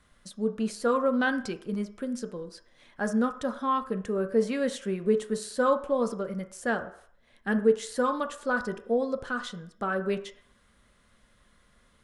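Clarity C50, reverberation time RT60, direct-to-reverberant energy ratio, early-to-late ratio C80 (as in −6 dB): 12.5 dB, 0.65 s, 7.5 dB, 16.0 dB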